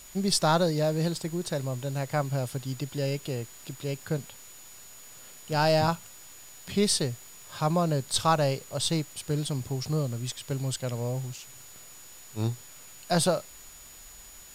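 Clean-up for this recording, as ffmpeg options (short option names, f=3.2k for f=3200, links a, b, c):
-af "adeclick=t=4,bandreject=f=6.9k:w=30,afwtdn=0.0032"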